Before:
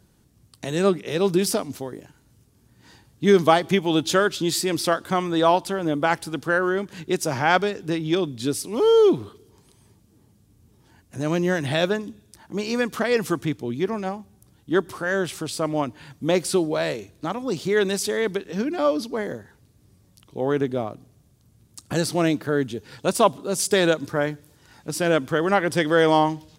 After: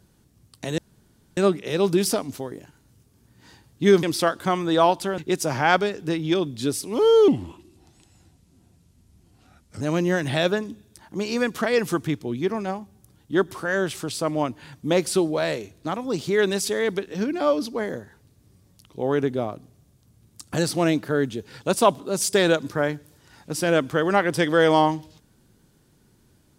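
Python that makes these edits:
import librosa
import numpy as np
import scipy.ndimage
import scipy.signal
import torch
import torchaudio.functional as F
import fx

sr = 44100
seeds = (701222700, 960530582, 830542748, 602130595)

y = fx.edit(x, sr, fx.insert_room_tone(at_s=0.78, length_s=0.59),
    fx.cut(start_s=3.44, length_s=1.24),
    fx.cut(start_s=5.83, length_s=1.16),
    fx.speed_span(start_s=9.09, length_s=2.1, speed=0.83), tone=tone)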